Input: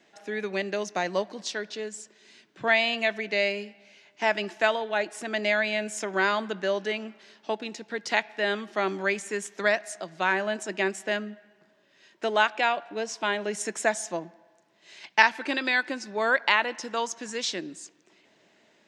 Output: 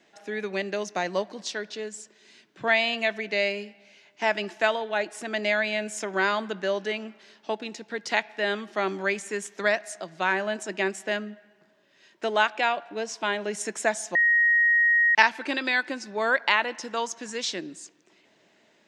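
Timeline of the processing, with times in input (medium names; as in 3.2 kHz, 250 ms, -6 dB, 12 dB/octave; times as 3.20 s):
14.15–15.15 s: bleep 1.88 kHz -17 dBFS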